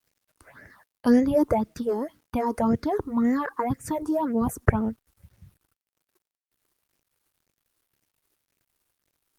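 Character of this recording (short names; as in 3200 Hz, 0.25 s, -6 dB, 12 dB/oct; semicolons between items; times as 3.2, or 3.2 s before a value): phasing stages 6, 1.9 Hz, lowest notch 160–1100 Hz; a quantiser's noise floor 12-bit, dither none; Opus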